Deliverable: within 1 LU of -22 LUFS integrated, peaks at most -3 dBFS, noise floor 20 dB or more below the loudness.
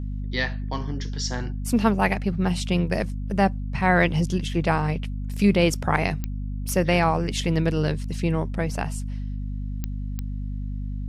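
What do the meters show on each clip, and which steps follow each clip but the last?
clicks found 4; hum 50 Hz; highest harmonic 250 Hz; hum level -27 dBFS; loudness -25.0 LUFS; peak level -5.0 dBFS; loudness target -22.0 LUFS
-> de-click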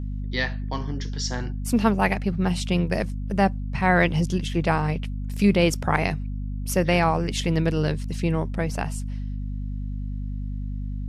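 clicks found 0; hum 50 Hz; highest harmonic 250 Hz; hum level -27 dBFS
-> de-hum 50 Hz, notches 5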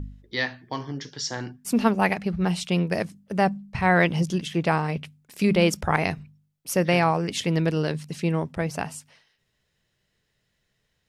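hum not found; loudness -25.0 LUFS; peak level -5.0 dBFS; loudness target -22.0 LUFS
-> trim +3 dB; peak limiter -3 dBFS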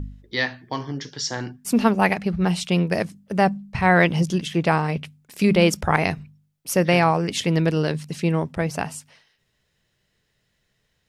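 loudness -22.0 LUFS; peak level -3.0 dBFS; noise floor -71 dBFS

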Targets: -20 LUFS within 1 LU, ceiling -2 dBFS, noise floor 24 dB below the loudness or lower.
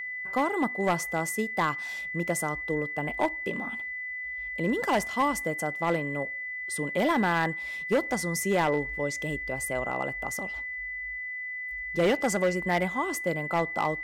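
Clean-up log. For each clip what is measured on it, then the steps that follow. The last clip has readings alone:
clipped samples 0.8%; clipping level -18.5 dBFS; steady tone 2 kHz; tone level -33 dBFS; loudness -29.0 LUFS; peak level -18.5 dBFS; loudness target -20.0 LUFS
-> clip repair -18.5 dBFS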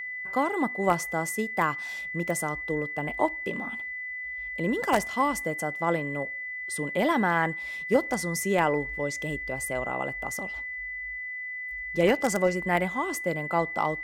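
clipped samples 0.0%; steady tone 2 kHz; tone level -33 dBFS
-> band-stop 2 kHz, Q 30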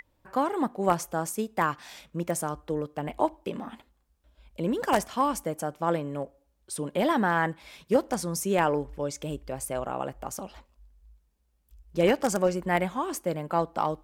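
steady tone not found; loudness -29.0 LUFS; peak level -9.0 dBFS; loudness target -20.0 LUFS
-> trim +9 dB; peak limiter -2 dBFS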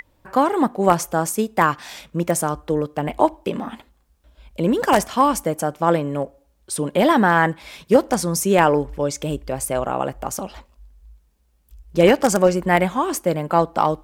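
loudness -20.0 LUFS; peak level -2.0 dBFS; noise floor -61 dBFS

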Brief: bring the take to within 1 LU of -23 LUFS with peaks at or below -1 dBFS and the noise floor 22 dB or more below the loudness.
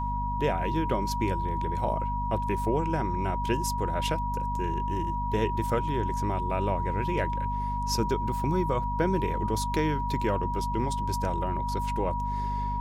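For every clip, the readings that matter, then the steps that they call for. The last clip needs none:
hum 50 Hz; highest harmonic 250 Hz; hum level -30 dBFS; steady tone 960 Hz; tone level -30 dBFS; loudness -29.0 LUFS; peak level -13.5 dBFS; loudness target -23.0 LUFS
-> de-hum 50 Hz, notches 5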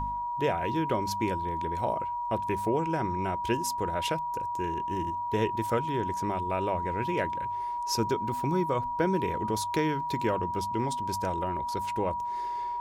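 hum not found; steady tone 960 Hz; tone level -30 dBFS
-> band-stop 960 Hz, Q 30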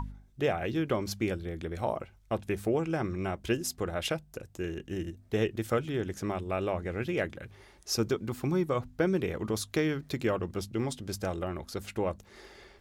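steady tone not found; loudness -32.5 LUFS; peak level -14.5 dBFS; loudness target -23.0 LUFS
-> trim +9.5 dB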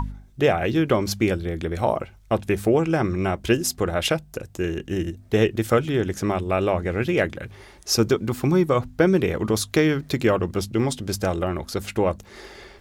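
loudness -23.0 LUFS; peak level -5.0 dBFS; noise floor -49 dBFS

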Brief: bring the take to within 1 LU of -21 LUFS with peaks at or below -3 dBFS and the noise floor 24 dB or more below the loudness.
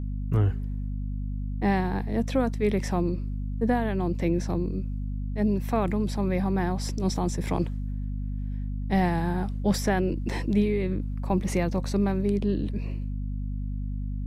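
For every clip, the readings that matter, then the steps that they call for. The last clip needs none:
hum 50 Hz; highest harmonic 250 Hz; hum level -28 dBFS; loudness -28.0 LUFS; peak level -11.5 dBFS; loudness target -21.0 LUFS
-> hum notches 50/100/150/200/250 Hz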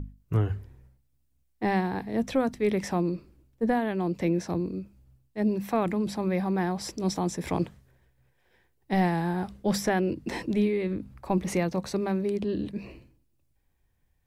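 hum not found; loudness -29.0 LUFS; peak level -12.5 dBFS; loudness target -21.0 LUFS
-> trim +8 dB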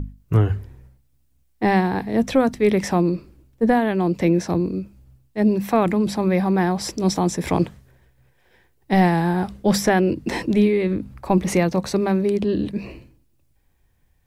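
loudness -21.0 LUFS; peak level -4.5 dBFS; noise floor -62 dBFS

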